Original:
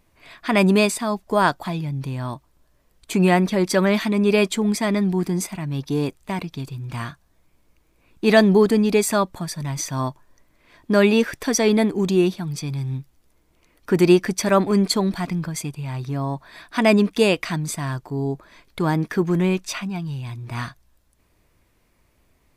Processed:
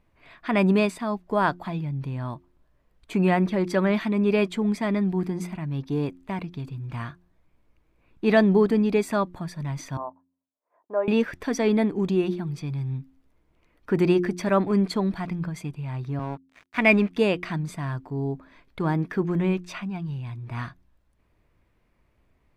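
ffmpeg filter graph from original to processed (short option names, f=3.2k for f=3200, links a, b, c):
-filter_complex "[0:a]asettb=1/sr,asplit=3[a][b][c];[a]atrim=end=9.974[d];[b]atrim=start=9.97:end=11.08,asetpts=PTS-STARTPTS,afade=t=in:d=0.004:c=qsin,afade=t=out:st=1.106:d=0.004:c=qsin,asuperpass=centerf=730:order=4:qfactor=1.3,agate=range=-33dB:threshold=-58dB:ratio=3:release=100:detection=peak[e];[c]atrim=start=11.076[f];[d][e]acrossfade=d=0.004:c1=hsin:c2=qsin[g];[g][f]acrossfade=d=0.004:c1=qsin:c2=hsin,asettb=1/sr,asplit=3[h][i][j];[h]atrim=end=16.194[k];[i]atrim=start=16.19:end=17.1,asetpts=PTS-STARTPTS,afade=t=in:d=0.004:c=qsin,afade=t=out:st=0.906:d=0.004:c=qsin,highpass=f=120:w=0.5412,highpass=f=120:w=1.3066,equalizer=f=2.3k:t=o:w=0.48:g=13,aeval=exprs='sgn(val(0))*max(abs(val(0))-0.02,0)':c=same[l];[j]atrim=start=17.096[m];[k][l]acrossfade=d=0.004:c1=hsin:c2=qsin[n];[n][m]acrossfade=d=0.004:c1=qsin:c2=hsin,bass=f=250:g=2,treble=f=4k:g=-13,bandreject=f=88.68:t=h:w=4,bandreject=f=177.36:t=h:w=4,bandreject=f=266.04:t=h:w=4,bandreject=f=354.72:t=h:w=4,volume=-4.5dB"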